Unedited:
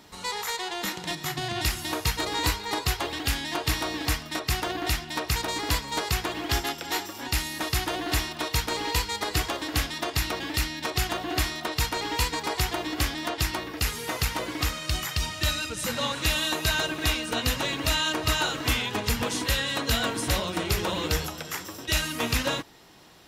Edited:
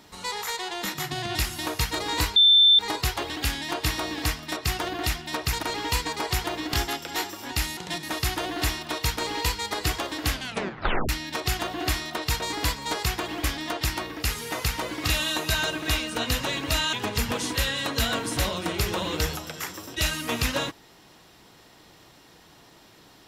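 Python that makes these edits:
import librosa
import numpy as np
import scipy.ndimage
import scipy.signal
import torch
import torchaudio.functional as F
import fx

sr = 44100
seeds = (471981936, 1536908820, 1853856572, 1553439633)

y = fx.edit(x, sr, fx.move(start_s=0.94, length_s=0.26, to_s=7.53),
    fx.insert_tone(at_s=2.62, length_s=0.43, hz=3550.0, db=-12.5),
    fx.swap(start_s=5.46, length_s=1.04, other_s=11.9, other_length_s=1.11),
    fx.tape_stop(start_s=9.81, length_s=0.78),
    fx.cut(start_s=14.65, length_s=1.59),
    fx.cut(start_s=18.09, length_s=0.75), tone=tone)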